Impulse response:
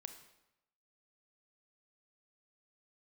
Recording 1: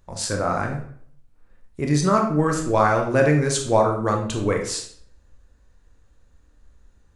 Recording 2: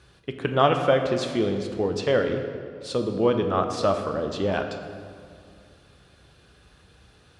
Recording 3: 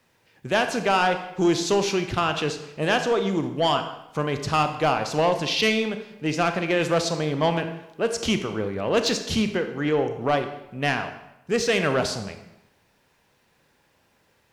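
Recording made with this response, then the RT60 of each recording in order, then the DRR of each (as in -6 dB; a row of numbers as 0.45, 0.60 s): 3; 0.55, 2.2, 0.90 s; 1.5, 4.5, 7.5 dB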